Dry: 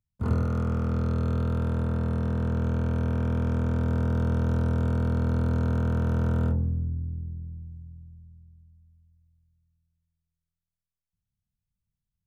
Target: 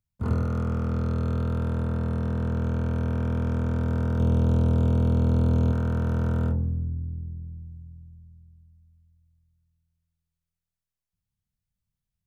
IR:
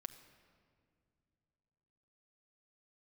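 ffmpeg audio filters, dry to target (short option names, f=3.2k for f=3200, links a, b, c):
-filter_complex "[0:a]asettb=1/sr,asplit=3[a][b][c];[a]atrim=end=4.174[d];[b]atrim=start=4.17:end=5.72,asetpts=PTS-STARTPTS,afade=t=in:d=0.004:c=qsin,afade=t=out:st=1.546:d=0.004:c=qsin,asplit=2[e][f];[f]adelay=24,volume=-5.5dB[g];[e][g]amix=inputs=2:normalize=0,atrim=end_sample=68355[h];[c]atrim=start=5.716[i];[d][h]acrossfade=d=0.004:c1=hsin:c2=qsin[j];[j][i]acrossfade=d=0.004:c1=qsin:c2=hsin"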